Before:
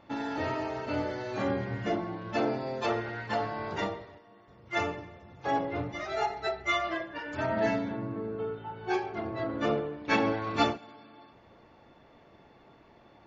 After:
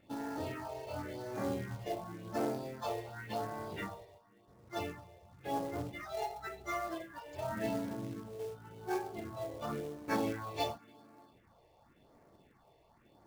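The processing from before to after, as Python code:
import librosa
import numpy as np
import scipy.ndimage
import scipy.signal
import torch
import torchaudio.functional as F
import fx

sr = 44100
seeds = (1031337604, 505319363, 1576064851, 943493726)

y = fx.phaser_stages(x, sr, stages=4, low_hz=230.0, high_hz=3500.0, hz=0.92, feedback_pct=5)
y = fx.quant_float(y, sr, bits=2)
y = y * 10.0 ** (-5.5 / 20.0)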